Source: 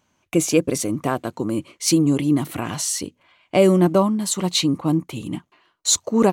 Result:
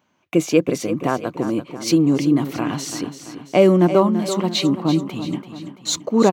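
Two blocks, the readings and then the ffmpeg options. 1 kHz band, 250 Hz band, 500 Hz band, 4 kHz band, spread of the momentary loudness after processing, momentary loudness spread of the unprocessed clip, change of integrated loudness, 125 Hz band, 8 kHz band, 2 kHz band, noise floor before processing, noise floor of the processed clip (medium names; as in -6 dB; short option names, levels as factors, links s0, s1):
+2.0 dB, +2.0 dB, +2.5 dB, -1.0 dB, 13 LU, 11 LU, +1.0 dB, +0.5 dB, -7.0 dB, +1.5 dB, -68 dBFS, -65 dBFS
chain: -af "highpass=140,equalizer=f=9600:t=o:w=1.2:g=-14.5,aecho=1:1:336|672|1008|1344|1680:0.282|0.138|0.0677|0.0332|0.0162,volume=1.26"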